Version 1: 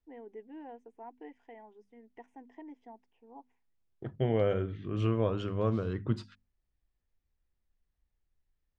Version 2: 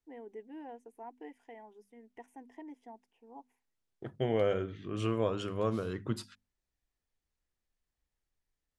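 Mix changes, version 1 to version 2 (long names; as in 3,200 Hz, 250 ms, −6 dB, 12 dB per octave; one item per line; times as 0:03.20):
second voice: add low-shelf EQ 150 Hz −9.5 dB
master: remove high-frequency loss of the air 130 metres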